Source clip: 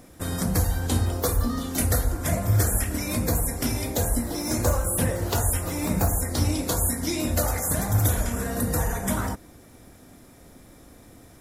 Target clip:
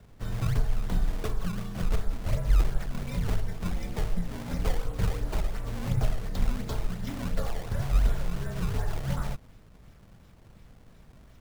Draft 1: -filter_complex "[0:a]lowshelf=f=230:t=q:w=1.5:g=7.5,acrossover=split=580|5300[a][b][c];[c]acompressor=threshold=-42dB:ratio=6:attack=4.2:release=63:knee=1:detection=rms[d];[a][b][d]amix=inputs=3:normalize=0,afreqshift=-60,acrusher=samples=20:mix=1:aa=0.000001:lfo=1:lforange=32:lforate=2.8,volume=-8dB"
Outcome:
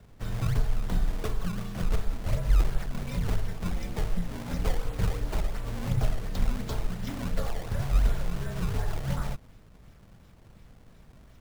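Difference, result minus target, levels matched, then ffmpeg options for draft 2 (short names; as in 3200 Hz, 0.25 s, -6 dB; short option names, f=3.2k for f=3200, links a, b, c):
compressor: peak gain reduction -9.5 dB
-filter_complex "[0:a]lowshelf=f=230:t=q:w=1.5:g=7.5,acrossover=split=580|5300[a][b][c];[c]acompressor=threshold=-53.5dB:ratio=6:attack=4.2:release=63:knee=1:detection=rms[d];[a][b][d]amix=inputs=3:normalize=0,afreqshift=-60,acrusher=samples=20:mix=1:aa=0.000001:lfo=1:lforange=32:lforate=2.8,volume=-8dB"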